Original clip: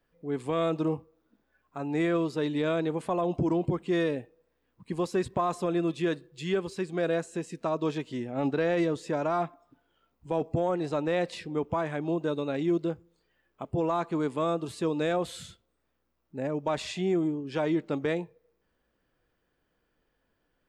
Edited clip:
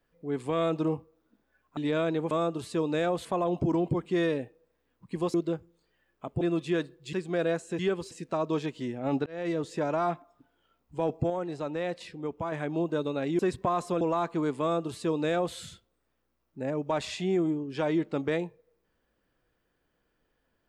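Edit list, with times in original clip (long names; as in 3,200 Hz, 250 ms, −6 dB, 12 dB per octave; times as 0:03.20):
0:01.77–0:02.48: remove
0:05.11–0:05.73: swap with 0:12.71–0:13.78
0:06.45–0:06.77: move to 0:07.43
0:08.58–0:09.13: fade in equal-power
0:10.62–0:11.84: clip gain −4.5 dB
0:14.38–0:15.32: duplicate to 0:03.02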